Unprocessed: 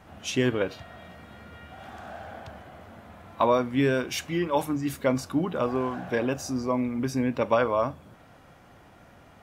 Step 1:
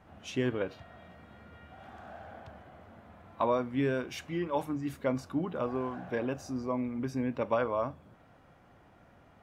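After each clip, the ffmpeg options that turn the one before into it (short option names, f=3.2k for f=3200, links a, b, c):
-af "highshelf=f=3.6k:g=-9,volume=-6dB"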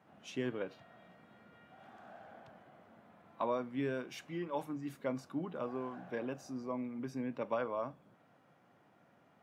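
-af "highpass=f=130:w=0.5412,highpass=f=130:w=1.3066,volume=-6.5dB"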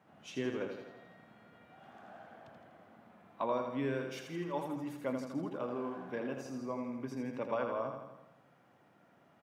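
-af "aecho=1:1:82|164|246|328|410|492|574:0.501|0.286|0.163|0.0928|0.0529|0.0302|0.0172"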